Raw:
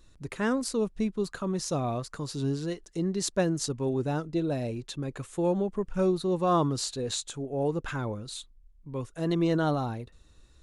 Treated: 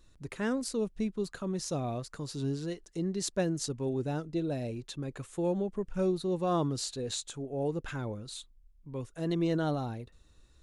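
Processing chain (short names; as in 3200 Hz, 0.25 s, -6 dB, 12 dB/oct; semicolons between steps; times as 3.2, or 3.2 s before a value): dynamic EQ 1100 Hz, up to -5 dB, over -47 dBFS, Q 1.9; gain -3.5 dB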